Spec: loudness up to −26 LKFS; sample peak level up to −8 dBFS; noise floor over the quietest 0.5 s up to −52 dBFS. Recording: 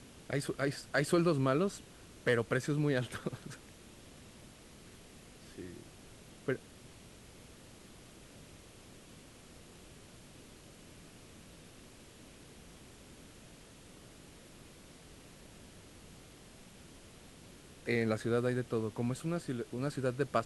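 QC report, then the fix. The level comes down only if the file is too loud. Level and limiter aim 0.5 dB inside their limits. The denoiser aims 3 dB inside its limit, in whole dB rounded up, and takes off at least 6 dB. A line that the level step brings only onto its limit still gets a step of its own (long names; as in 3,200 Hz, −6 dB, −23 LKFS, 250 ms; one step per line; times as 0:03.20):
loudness −34.5 LKFS: in spec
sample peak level −16.5 dBFS: in spec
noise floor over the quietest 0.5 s −55 dBFS: in spec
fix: no processing needed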